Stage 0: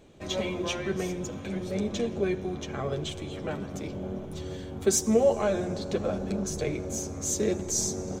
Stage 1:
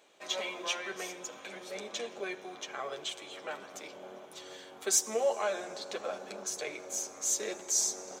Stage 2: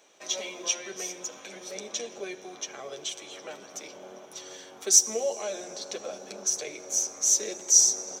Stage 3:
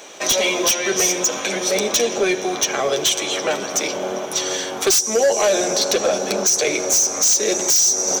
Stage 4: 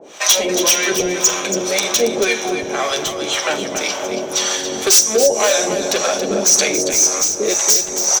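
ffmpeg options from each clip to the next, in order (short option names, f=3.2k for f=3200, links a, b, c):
-af "highpass=770"
-filter_complex "[0:a]acrossover=split=680|2300[a][b][c];[b]acompressor=threshold=-53dB:ratio=6[d];[c]equalizer=f=5.8k:t=o:w=0.2:g=13.5[e];[a][d][e]amix=inputs=3:normalize=0,volume=2.5dB"
-af "acompressor=threshold=-31dB:ratio=3,aeval=exprs='0.119*sin(PI/2*3.16*val(0)/0.119)':c=same,volume=7dB"
-filter_complex "[0:a]acrossover=split=660[a][b];[a]aeval=exprs='val(0)*(1-1/2+1/2*cos(2*PI*1.9*n/s))':c=same[c];[b]aeval=exprs='val(0)*(1-1/2-1/2*cos(2*PI*1.9*n/s))':c=same[d];[c][d]amix=inputs=2:normalize=0,aecho=1:1:44|278|532:0.211|0.355|0.119,volume=6.5dB"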